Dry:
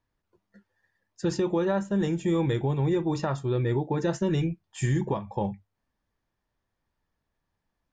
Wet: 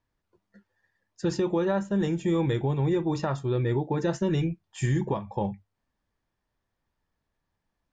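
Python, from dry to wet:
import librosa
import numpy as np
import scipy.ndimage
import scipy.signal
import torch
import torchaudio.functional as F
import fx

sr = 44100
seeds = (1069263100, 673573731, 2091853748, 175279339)

y = scipy.signal.sosfilt(scipy.signal.butter(2, 8300.0, 'lowpass', fs=sr, output='sos'), x)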